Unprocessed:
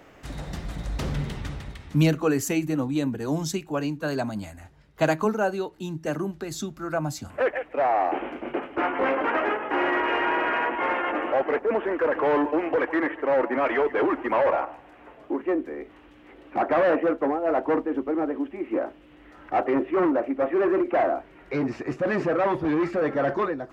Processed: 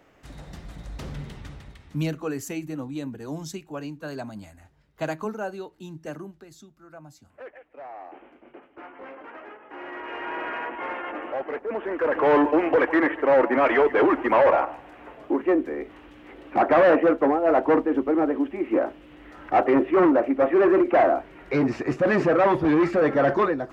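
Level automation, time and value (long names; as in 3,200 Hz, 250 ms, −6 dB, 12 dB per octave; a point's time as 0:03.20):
0:06.09 −7 dB
0:06.66 −18 dB
0:09.59 −18 dB
0:10.41 −6.5 dB
0:11.65 −6.5 dB
0:12.33 +4 dB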